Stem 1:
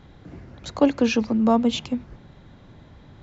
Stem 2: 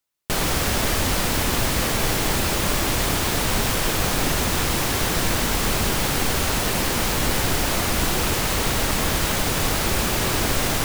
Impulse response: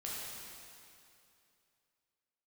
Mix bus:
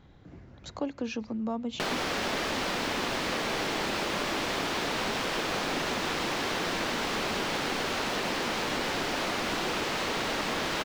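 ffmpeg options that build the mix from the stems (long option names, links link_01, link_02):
-filter_complex "[0:a]volume=-7.5dB[link_01];[1:a]acrossover=split=190 5600:gain=0.126 1 0.112[link_02][link_03][link_04];[link_02][link_03][link_04]amix=inputs=3:normalize=0,adelay=1500,volume=2.5dB[link_05];[link_01][link_05]amix=inputs=2:normalize=0,acompressor=threshold=-34dB:ratio=2"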